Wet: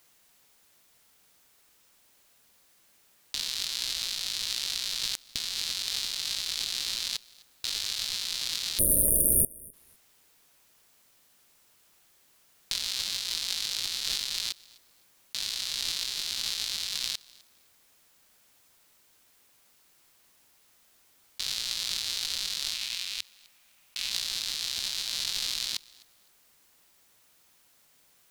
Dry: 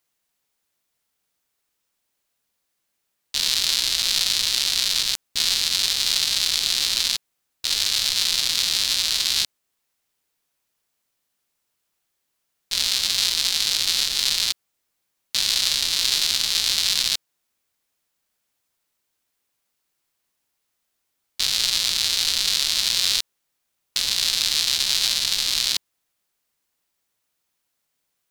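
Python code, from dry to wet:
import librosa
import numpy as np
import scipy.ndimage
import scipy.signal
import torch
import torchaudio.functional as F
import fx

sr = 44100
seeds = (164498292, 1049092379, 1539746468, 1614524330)

y = fx.spec_erase(x, sr, start_s=8.78, length_s=0.95, low_hz=650.0, high_hz=8900.0)
y = fx.graphic_eq_15(y, sr, hz=(100, 400, 2500), db=(-9, -7, 7), at=(22.74, 24.11))
y = fx.over_compress(y, sr, threshold_db=-34.0, ratio=-1.0)
y = fx.echo_feedback(y, sr, ms=255, feedback_pct=20, wet_db=-24)
y = y * librosa.db_to_amplitude(2.0)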